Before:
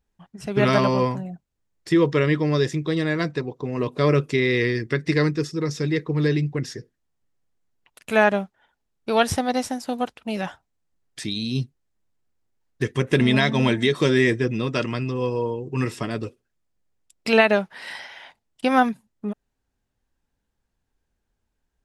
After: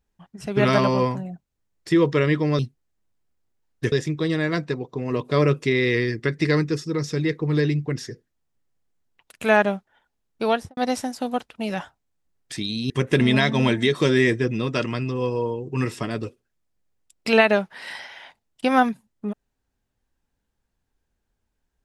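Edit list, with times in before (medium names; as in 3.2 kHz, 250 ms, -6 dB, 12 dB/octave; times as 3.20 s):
9.09–9.44 s: studio fade out
11.57–12.90 s: move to 2.59 s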